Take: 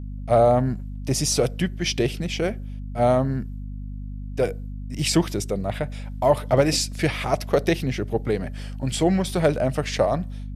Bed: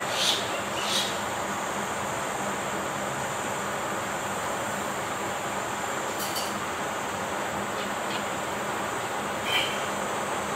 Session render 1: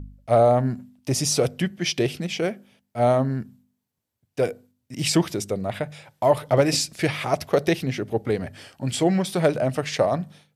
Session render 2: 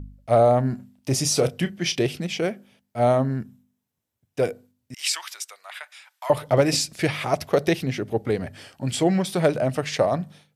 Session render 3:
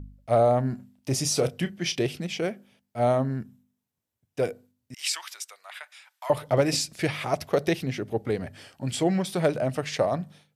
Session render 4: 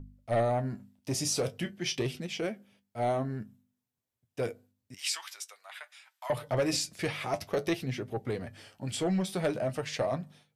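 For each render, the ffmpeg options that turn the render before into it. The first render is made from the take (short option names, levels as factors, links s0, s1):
-af "bandreject=f=50:t=h:w=4,bandreject=f=100:t=h:w=4,bandreject=f=150:t=h:w=4,bandreject=f=200:t=h:w=4,bandreject=f=250:t=h:w=4"
-filter_complex "[0:a]asettb=1/sr,asplit=3[s0][s1][s2];[s0]atrim=end=0.694[s3];[s1]atrim=start=0.69:end=1.96,asetpts=PTS-STARTPTS,afade=t=in:d=0.004:c=qsin,afade=t=out:st=1.266:d=0.004:c=qsin,asplit=2[s4][s5];[s5]adelay=30,volume=0.251[s6];[s4][s6]amix=inputs=2:normalize=0,atrim=end_sample=56007[s7];[s2]atrim=start=1.956[s8];[s3][s7]acrossfade=d=0.004:c1=hsin:c2=qsin[s9];[s9][s8]acrossfade=d=0.004:c1=qsin:c2=hsin,asettb=1/sr,asplit=3[s10][s11][s12];[s10]atrim=end=3.094[s13];[s11]atrim=start=3.09:end=4.4,asetpts=PTS-STARTPTS,afade=t=in:d=0.004:c=qsin,afade=t=out:st=1.306:d=0.004:c=qsin,bandreject=f=4500:w=12[s14];[s12]atrim=start=4.396[s15];[s13][s14]acrossfade=d=0.004:c1=hsin:c2=qsin[s16];[s16][s15]acrossfade=d=0.004:c1=qsin:c2=hsin,asettb=1/sr,asplit=3[s17][s18][s19];[s17]atrim=end=4.944[s20];[s18]atrim=start=4.94:end=6.3,asetpts=PTS-STARTPTS,afade=t=in:d=0.004:c=qsin,afade=t=out:st=1.356:d=0.004:c=qsin,highpass=f=1100:w=0.5412,highpass=f=1100:w=1.3066[s21];[s19]atrim=start=6.296[s22];[s20][s21]acrossfade=d=0.004:c1=hsin:c2=qsin[s23];[s23][s22]acrossfade=d=0.004:c1=qsin:c2=hsin"
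-af "volume=0.668"
-filter_complex "[0:a]flanger=delay=7.5:depth=3.4:regen=53:speed=0.49:shape=triangular,acrossover=split=1800[s0][s1];[s0]asoftclip=type=tanh:threshold=0.0794[s2];[s2][s1]amix=inputs=2:normalize=0"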